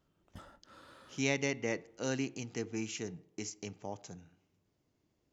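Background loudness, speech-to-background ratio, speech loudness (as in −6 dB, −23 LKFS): −57.5 LKFS, 19.5 dB, −38.0 LKFS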